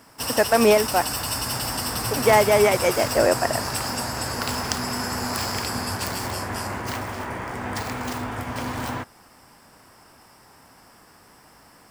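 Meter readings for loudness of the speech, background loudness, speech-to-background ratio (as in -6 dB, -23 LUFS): -20.5 LUFS, -27.0 LUFS, 6.5 dB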